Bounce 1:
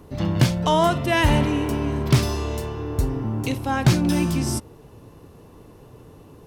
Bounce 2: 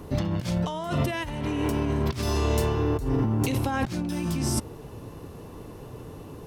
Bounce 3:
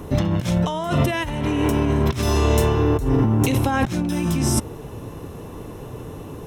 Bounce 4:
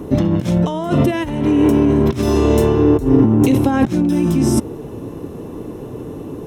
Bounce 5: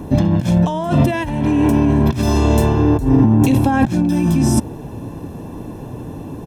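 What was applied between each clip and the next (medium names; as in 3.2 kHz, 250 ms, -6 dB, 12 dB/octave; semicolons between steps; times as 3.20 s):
compressor with a negative ratio -27 dBFS, ratio -1
band-stop 4.6 kHz, Q 6.2; trim +6.5 dB
peaking EQ 300 Hz +11.5 dB 1.9 oct; trim -2 dB
comb 1.2 ms, depth 54%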